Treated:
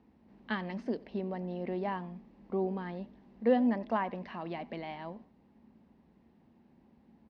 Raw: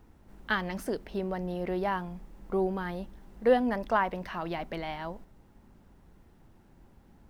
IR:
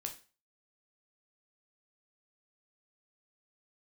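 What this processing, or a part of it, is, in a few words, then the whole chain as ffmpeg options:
frequency-shifting delay pedal into a guitar cabinet: -filter_complex "[0:a]asplit=3[a][b][c];[b]adelay=90,afreqshift=51,volume=-22.5dB[d];[c]adelay=180,afreqshift=102,volume=-31.9dB[e];[a][d][e]amix=inputs=3:normalize=0,highpass=98,equalizer=f=110:t=q:w=4:g=-8,equalizer=f=230:t=q:w=4:g=9,equalizer=f=1.4k:t=q:w=4:g=-9,equalizer=f=3.4k:t=q:w=4:g=-4,lowpass=f=4.4k:w=0.5412,lowpass=f=4.4k:w=1.3066,volume=-4.5dB"

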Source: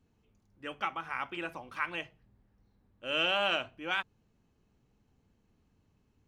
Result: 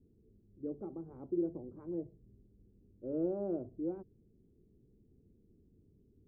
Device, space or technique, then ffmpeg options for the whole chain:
under water: -af "lowpass=f=420:w=0.5412,lowpass=f=420:w=1.3066,equalizer=f=380:t=o:w=0.56:g=8,volume=4dB"

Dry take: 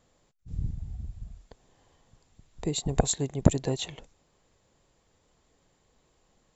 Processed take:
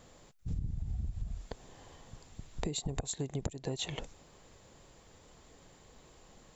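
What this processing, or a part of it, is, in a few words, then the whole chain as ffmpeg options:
serial compression, peaks first: -af "acompressor=threshold=-36dB:ratio=8,acompressor=threshold=-44dB:ratio=2.5,volume=9.5dB"

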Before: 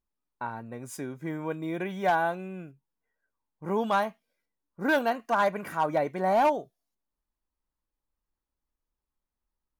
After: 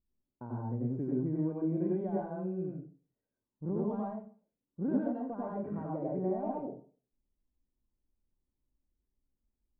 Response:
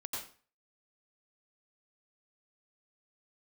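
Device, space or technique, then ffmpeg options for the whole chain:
television next door: -filter_complex "[0:a]acompressor=threshold=-31dB:ratio=5,lowpass=320[a];[1:a]atrim=start_sample=2205[b];[a][b]afir=irnorm=-1:irlink=0,volume=7.5dB"

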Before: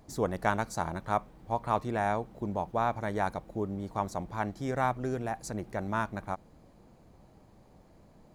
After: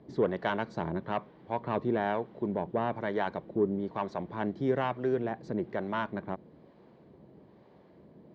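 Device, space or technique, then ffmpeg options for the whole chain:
guitar amplifier with harmonic tremolo: -filter_complex "[0:a]highpass=74,asettb=1/sr,asplit=3[a][b][c];[a]atrim=end=4.404[d];[b]atrim=start=4.4:end=4.82,asetpts=PTS-STARTPTS,afade=t=in:d=0.004:c=qsin,afade=t=out:st=0.416:d=0.004:c=qsin,highshelf=f=4.4k:g=6[e];[c]atrim=start=4.816[f];[d][e]acrossfade=d=0.004:c1=hsin:c2=qsin[g];[g][f]acrossfade=d=0.004:c1=qsin:c2=hsin,acrossover=split=580[h][i];[h]aeval=exprs='val(0)*(1-0.5/2+0.5/2*cos(2*PI*1.1*n/s))':c=same[j];[i]aeval=exprs='val(0)*(1-0.5/2-0.5/2*cos(2*PI*1.1*n/s))':c=same[k];[j][k]amix=inputs=2:normalize=0,asoftclip=type=tanh:threshold=-23.5dB,highpass=92,equalizer=f=100:t=q:w=4:g=-8,equalizer=f=390:t=q:w=4:g=6,equalizer=f=780:t=q:w=4:g=-6,equalizer=f=1.3k:t=q:w=4:g=-6,equalizer=f=2.5k:t=q:w=4:g=-6,lowpass=f=3.5k:w=0.5412,lowpass=f=3.5k:w=1.3066,volume=5.5dB"

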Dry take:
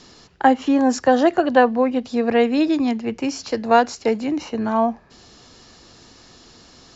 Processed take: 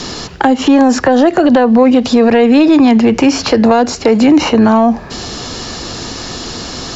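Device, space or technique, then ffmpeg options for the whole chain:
mastering chain: -filter_complex "[0:a]equalizer=f=2k:t=o:w=0.77:g=-1.5,acrossover=split=550|3300[a][b][c];[a]acompressor=threshold=-23dB:ratio=4[d];[b]acompressor=threshold=-29dB:ratio=4[e];[c]acompressor=threshold=-48dB:ratio=4[f];[d][e][f]amix=inputs=3:normalize=0,acompressor=threshold=-25dB:ratio=3,asoftclip=type=tanh:threshold=-19dB,alimiter=level_in=25dB:limit=-1dB:release=50:level=0:latency=1,volume=-1dB"

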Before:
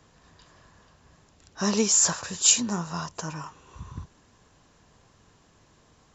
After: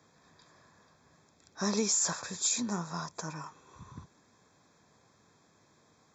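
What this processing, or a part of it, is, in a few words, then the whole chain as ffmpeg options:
PA system with an anti-feedback notch: -af "highpass=130,asuperstop=centerf=2900:order=12:qfactor=5.5,alimiter=limit=-14.5dB:level=0:latency=1:release=74,volume=-4.5dB"

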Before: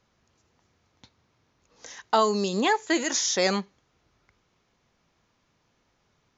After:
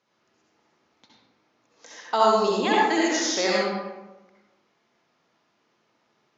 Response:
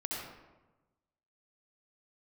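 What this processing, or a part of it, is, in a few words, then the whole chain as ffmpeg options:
supermarket ceiling speaker: -filter_complex "[0:a]highpass=240,lowpass=6.8k[a];[1:a]atrim=start_sample=2205[b];[a][b]afir=irnorm=-1:irlink=0"

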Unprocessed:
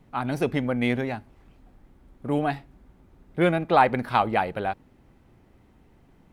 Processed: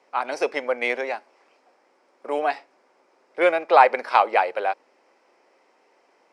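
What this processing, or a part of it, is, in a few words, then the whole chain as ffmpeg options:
phone speaker on a table: -af "highpass=f=430:w=0.5412,highpass=f=430:w=1.3066,equalizer=f=540:t=q:w=4:g=4,equalizer=f=1k:t=q:w=4:g=3,equalizer=f=2.3k:t=q:w=4:g=4,equalizer=f=3.5k:t=q:w=4:g=-5,equalizer=f=5.2k:t=q:w=4:g=10,lowpass=f=8.7k:w=0.5412,lowpass=f=8.7k:w=1.3066,volume=3dB"

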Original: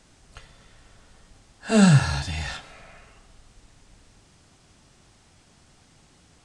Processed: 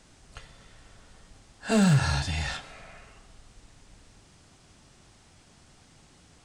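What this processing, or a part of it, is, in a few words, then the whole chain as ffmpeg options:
limiter into clipper: -af "alimiter=limit=-12.5dB:level=0:latency=1:release=98,asoftclip=type=hard:threshold=-15.5dB"

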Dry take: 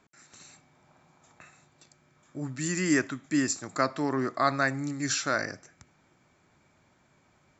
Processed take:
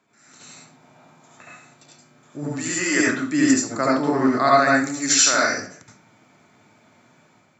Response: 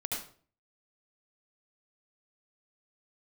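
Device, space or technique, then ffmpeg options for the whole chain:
far laptop microphone: -filter_complex "[0:a]asettb=1/sr,asplit=3[a][b][c];[a]atrim=end=2.594[d];[b]atrim=start=2.59:end=3,asetpts=PTS-STARTPTS,afade=t=in:d=0.004:c=qsin,afade=t=out:st=0.406:d=0.004:c=qsin,highpass=390[e];[c]atrim=start=2.996[f];[d][e]acrossfade=d=0.004:c1=hsin:c2=qsin[g];[g][f]acrossfade=d=0.004:c1=qsin:c2=hsin,asettb=1/sr,asplit=3[h][i][j];[h]atrim=end=3.514[k];[i]atrim=start=3.51:end=4.15,asetpts=PTS-STARTPTS,afade=t=in:d=0.004:c=qsin,afade=t=out:st=0.636:d=0.004:c=qsin,equalizer=f=2.9k:t=o:w=2.6:g=-5.5[l];[j]atrim=start=4.146[m];[k][l]acrossfade=d=0.004:c1=hsin:c2=qsin[n];[n][m]acrossfade=d=0.004:c1=qsin:c2=hsin,asettb=1/sr,asplit=3[o][p][q];[o]atrim=end=4.744[r];[p]atrim=start=4.74:end=5.51,asetpts=PTS-STARTPTS,afade=t=in:d=0.004:c=qsin,afade=t=out:st=0.766:d=0.004:c=qsin,aemphasis=mode=production:type=bsi[s];[q]atrim=start=5.506[t];[r][s]acrossfade=d=0.004:c1=hsin:c2=qsin[u];[u][t]acrossfade=d=0.004:c1=qsin:c2=hsin[v];[1:a]atrim=start_sample=2205[w];[v][w]afir=irnorm=-1:irlink=0,highpass=140,dynaudnorm=f=110:g=7:m=6.5dB"

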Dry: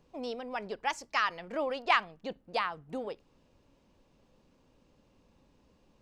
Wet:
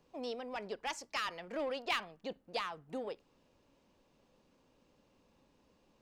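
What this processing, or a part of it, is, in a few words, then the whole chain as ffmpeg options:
one-band saturation: -filter_complex "[0:a]lowshelf=f=160:g=-8.5,acrossover=split=490|2400[a][b][c];[b]asoftclip=type=tanh:threshold=-36.5dB[d];[a][d][c]amix=inputs=3:normalize=0,volume=-1.5dB"

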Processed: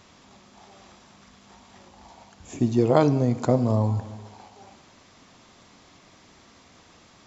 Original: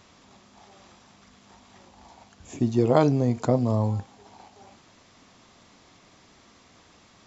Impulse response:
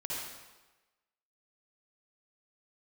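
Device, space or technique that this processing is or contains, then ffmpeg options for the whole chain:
compressed reverb return: -filter_complex "[0:a]asplit=2[a][b];[1:a]atrim=start_sample=2205[c];[b][c]afir=irnorm=-1:irlink=0,acompressor=threshold=-21dB:ratio=6,volume=-10dB[d];[a][d]amix=inputs=2:normalize=0"

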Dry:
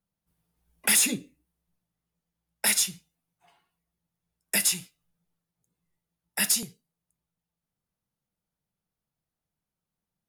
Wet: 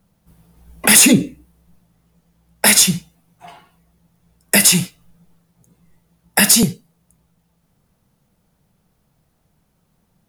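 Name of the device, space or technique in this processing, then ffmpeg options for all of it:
mastering chain: -af "equalizer=f=340:t=o:w=0.39:g=-2,acompressor=threshold=-26dB:ratio=2.5,tiltshelf=f=1.1k:g=4,alimiter=level_in=23.5dB:limit=-1dB:release=50:level=0:latency=1,volume=-1dB"

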